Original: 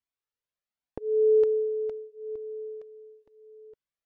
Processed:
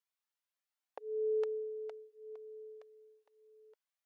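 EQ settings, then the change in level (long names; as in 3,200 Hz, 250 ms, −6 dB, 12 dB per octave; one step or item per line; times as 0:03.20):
high-pass filter 620 Hz 24 dB per octave
0.0 dB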